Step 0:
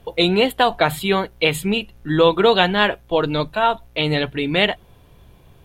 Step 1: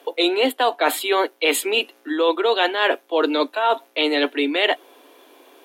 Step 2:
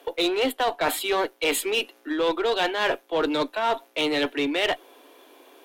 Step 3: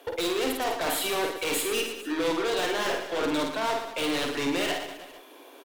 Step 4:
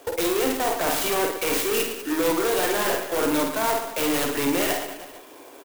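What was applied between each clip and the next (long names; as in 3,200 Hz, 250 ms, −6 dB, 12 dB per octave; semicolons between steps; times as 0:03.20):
Butterworth high-pass 260 Hz 96 dB per octave; reversed playback; downward compressor 6 to 1, threshold −23 dBFS, peak gain reduction 12.5 dB; reversed playback; level +7 dB
one-sided soft clipper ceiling −12 dBFS; in parallel at −6 dB: gain into a clipping stage and back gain 22.5 dB; on the sum: level −5.5 dB
hard clipping −27.5 dBFS, distortion −8 dB; reverse bouncing-ball delay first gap 50 ms, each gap 1.3×, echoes 5
converter with an unsteady clock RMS 0.059 ms; level +4.5 dB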